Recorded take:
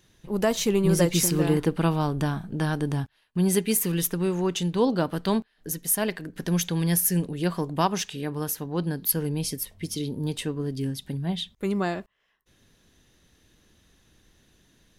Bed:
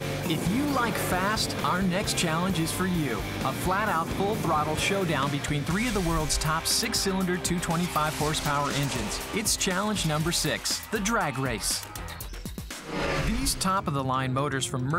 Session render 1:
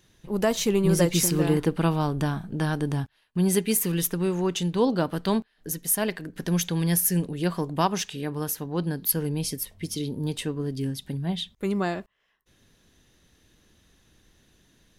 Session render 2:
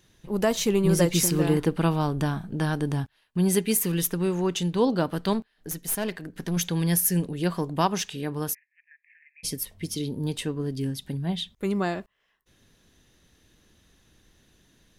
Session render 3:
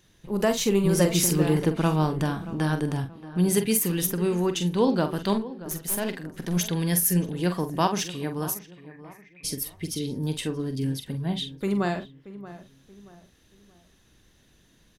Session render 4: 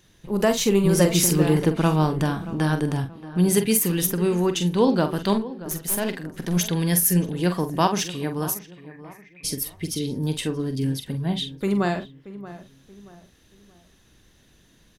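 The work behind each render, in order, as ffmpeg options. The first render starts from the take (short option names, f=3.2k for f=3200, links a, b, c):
-af anull
-filter_complex "[0:a]asettb=1/sr,asplit=3[a][b][c];[a]atrim=end=5.334[d];[b]atrim=start=5.33:end=6.57,asetpts=PTS-STARTPTS,afade=t=in:d=0.004:c=qsin,afade=t=out:st=1.236:d=0.004:c=qsin,aeval=exprs='(tanh(12.6*val(0)+0.4)-tanh(0.4))/12.6':c=same[e];[c]atrim=start=6.566[f];[d][e]acrossfade=d=0.004:c1=hsin:c2=qsin[g];[g][f]acrossfade=d=0.004:c1=qsin:c2=hsin,asplit=3[h][i][j];[h]afade=t=out:st=8.53:d=0.02[k];[i]asuperpass=centerf=2100:order=12:qfactor=2.7,afade=t=in:st=8.53:d=0.02,afade=t=out:st=9.43:d=0.02[l];[j]afade=t=in:st=9.43:d=0.02[m];[k][l][m]amix=inputs=3:normalize=0"
-filter_complex "[0:a]asplit=2[a][b];[b]adelay=45,volume=-9dB[c];[a][c]amix=inputs=2:normalize=0,asplit=2[d][e];[e]adelay=629,lowpass=f=1.9k:p=1,volume=-15.5dB,asplit=2[f][g];[g]adelay=629,lowpass=f=1.9k:p=1,volume=0.37,asplit=2[h][i];[i]adelay=629,lowpass=f=1.9k:p=1,volume=0.37[j];[d][f][h][j]amix=inputs=4:normalize=0"
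-af "volume=3dB"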